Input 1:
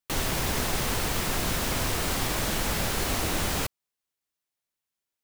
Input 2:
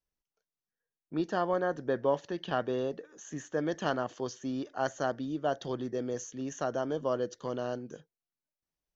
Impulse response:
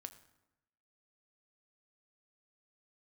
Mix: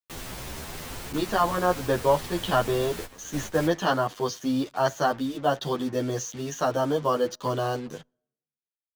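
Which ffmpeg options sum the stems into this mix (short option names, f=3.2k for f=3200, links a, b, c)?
-filter_complex "[0:a]volume=-8dB,asplit=2[a][b];[b]volume=-10.5dB[c];[1:a]equalizer=f=125:t=o:w=1:g=5,equalizer=f=1k:t=o:w=1:g=7,equalizer=f=4k:t=o:w=1:g=8,dynaudnorm=f=110:g=3:m=11.5dB,acrusher=bits=5:mix=0:aa=0.5,volume=-3.5dB,asplit=3[d][e][f];[e]volume=-20.5dB[g];[f]apad=whole_len=230973[h];[a][h]sidechaingate=range=-33dB:threshold=-34dB:ratio=16:detection=peak[i];[2:a]atrim=start_sample=2205[j];[c][g]amix=inputs=2:normalize=0[k];[k][j]afir=irnorm=-1:irlink=0[l];[i][d][l]amix=inputs=3:normalize=0,asplit=2[m][n];[n]adelay=10,afreqshift=1.4[o];[m][o]amix=inputs=2:normalize=1"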